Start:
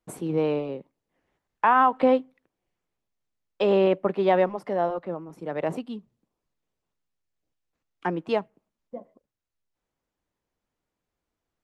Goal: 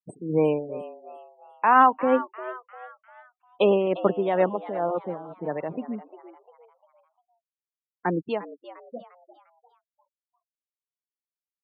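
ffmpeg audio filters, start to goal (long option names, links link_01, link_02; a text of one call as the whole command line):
ffmpeg -i in.wav -filter_complex "[0:a]afftfilt=real='re*gte(hypot(re,im),0.0251)':imag='im*gte(hypot(re,im),0.0251)':win_size=1024:overlap=0.75,tremolo=f=2.2:d=0.63,asplit=5[link_01][link_02][link_03][link_04][link_05];[link_02]adelay=350,afreqshift=120,volume=-15.5dB[link_06];[link_03]adelay=700,afreqshift=240,volume=-23.2dB[link_07];[link_04]adelay=1050,afreqshift=360,volume=-31dB[link_08];[link_05]adelay=1400,afreqshift=480,volume=-38.7dB[link_09];[link_01][link_06][link_07][link_08][link_09]amix=inputs=5:normalize=0,volume=3.5dB" out.wav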